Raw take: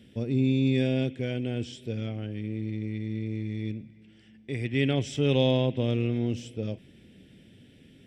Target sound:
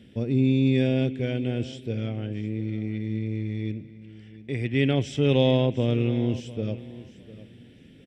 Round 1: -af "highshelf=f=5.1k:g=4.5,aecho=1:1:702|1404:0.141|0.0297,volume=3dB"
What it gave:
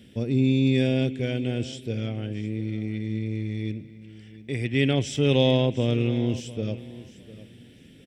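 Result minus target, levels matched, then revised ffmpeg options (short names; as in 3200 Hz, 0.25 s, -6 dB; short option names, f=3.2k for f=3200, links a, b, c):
8000 Hz band +7.0 dB
-af "highshelf=f=5.1k:g=-7,aecho=1:1:702|1404:0.141|0.0297,volume=3dB"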